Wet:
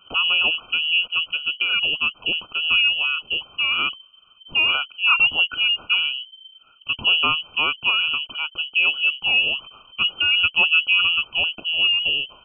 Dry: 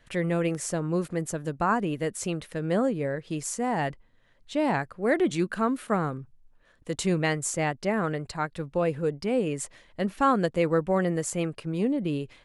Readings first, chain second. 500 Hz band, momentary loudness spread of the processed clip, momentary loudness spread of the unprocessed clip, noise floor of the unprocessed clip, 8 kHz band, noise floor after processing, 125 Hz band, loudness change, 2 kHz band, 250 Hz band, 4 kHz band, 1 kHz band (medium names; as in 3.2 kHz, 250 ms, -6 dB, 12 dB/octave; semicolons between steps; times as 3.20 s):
-15.0 dB, 8 LU, 8 LU, -60 dBFS, under -40 dB, -53 dBFS, -17.0 dB, +9.0 dB, +16.5 dB, -17.5 dB, +26.5 dB, -1.5 dB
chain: brick-wall FIR band-stop 770–1600 Hz; frequency inversion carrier 3.1 kHz; trim +6.5 dB